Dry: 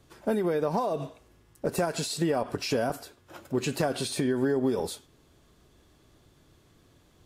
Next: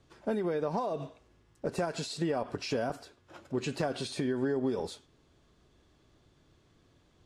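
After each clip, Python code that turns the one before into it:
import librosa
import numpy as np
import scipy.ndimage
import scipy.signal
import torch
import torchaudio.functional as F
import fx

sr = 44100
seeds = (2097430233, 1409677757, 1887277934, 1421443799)

y = scipy.signal.sosfilt(scipy.signal.butter(2, 6700.0, 'lowpass', fs=sr, output='sos'), x)
y = y * 10.0 ** (-4.5 / 20.0)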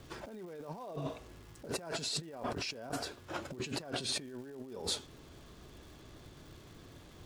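y = fx.over_compress(x, sr, threshold_db=-44.0, ratio=-1.0)
y = fx.dmg_crackle(y, sr, seeds[0], per_s=520.0, level_db=-54.0)
y = y * 10.0 ** (2.0 / 20.0)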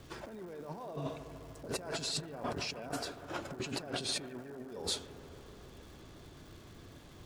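y = fx.echo_bbd(x, sr, ms=149, stages=2048, feedback_pct=80, wet_db=-12.5)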